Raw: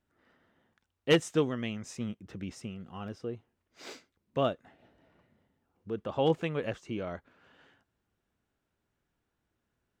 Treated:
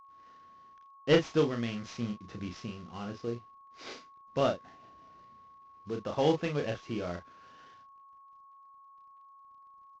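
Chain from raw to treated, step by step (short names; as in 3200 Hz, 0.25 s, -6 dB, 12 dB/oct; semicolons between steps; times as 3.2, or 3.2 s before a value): CVSD 32 kbps; doubler 34 ms -5.5 dB; whine 1100 Hz -53 dBFS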